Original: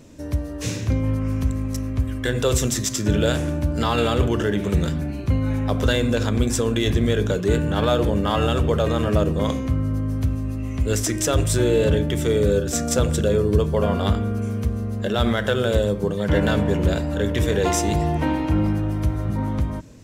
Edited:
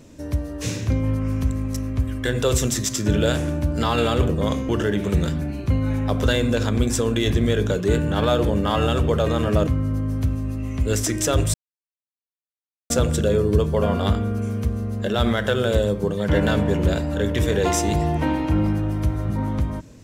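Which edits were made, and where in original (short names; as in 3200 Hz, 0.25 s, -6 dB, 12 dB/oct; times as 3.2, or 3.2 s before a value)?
9.27–9.67 move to 4.29
11.54–12.9 mute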